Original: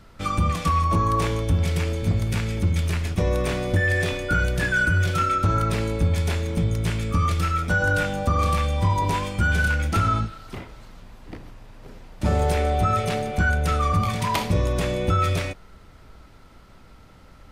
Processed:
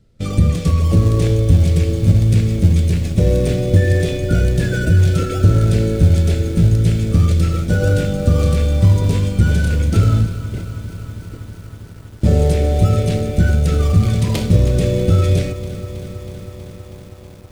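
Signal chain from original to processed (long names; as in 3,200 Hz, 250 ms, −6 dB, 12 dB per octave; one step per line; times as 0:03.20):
low-shelf EQ 210 Hz +7.5 dB
noise gate −29 dBFS, range −13 dB
in parallel at −10.5 dB: sample-and-hold swept by an LFO 41×, swing 100% 2 Hz
on the sum: octave-band graphic EQ 125/250/500/1,000/4,000/8,000 Hz +7/+3/+10/−12/+4/+6 dB
feedback echo at a low word length 321 ms, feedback 80%, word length 6 bits, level −14 dB
level −3 dB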